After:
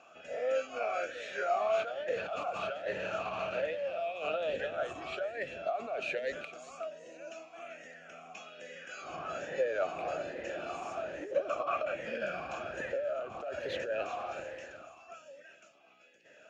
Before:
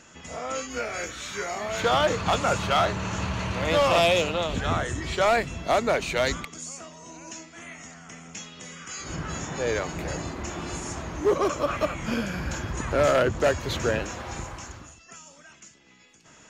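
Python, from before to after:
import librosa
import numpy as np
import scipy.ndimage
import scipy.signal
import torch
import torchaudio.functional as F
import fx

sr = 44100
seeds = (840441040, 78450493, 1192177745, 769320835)

y = fx.over_compress(x, sr, threshold_db=-29.0, ratio=-1.0)
y = y + 10.0 ** (-13.5 / 20.0) * np.pad(y, (int(389 * sr / 1000.0), 0))[:len(y)]
y = fx.vowel_sweep(y, sr, vowels='a-e', hz=1.2)
y = F.gain(torch.from_numpy(y), 4.5).numpy()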